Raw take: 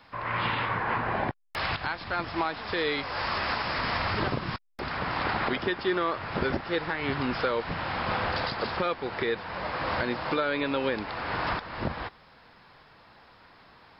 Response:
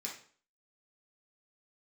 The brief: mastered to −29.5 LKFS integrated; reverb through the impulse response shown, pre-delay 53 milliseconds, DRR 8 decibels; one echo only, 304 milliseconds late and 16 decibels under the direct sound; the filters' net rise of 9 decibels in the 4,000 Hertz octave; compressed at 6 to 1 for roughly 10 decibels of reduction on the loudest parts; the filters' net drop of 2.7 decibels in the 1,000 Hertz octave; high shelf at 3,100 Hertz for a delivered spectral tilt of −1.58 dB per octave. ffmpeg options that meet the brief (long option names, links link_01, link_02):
-filter_complex "[0:a]equalizer=frequency=1000:width_type=o:gain=-4.5,highshelf=frequency=3100:gain=4.5,equalizer=frequency=4000:width_type=o:gain=8,acompressor=threshold=-33dB:ratio=6,aecho=1:1:304:0.158,asplit=2[link_01][link_02];[1:a]atrim=start_sample=2205,adelay=53[link_03];[link_02][link_03]afir=irnorm=-1:irlink=0,volume=-7.5dB[link_04];[link_01][link_04]amix=inputs=2:normalize=0,volume=5dB"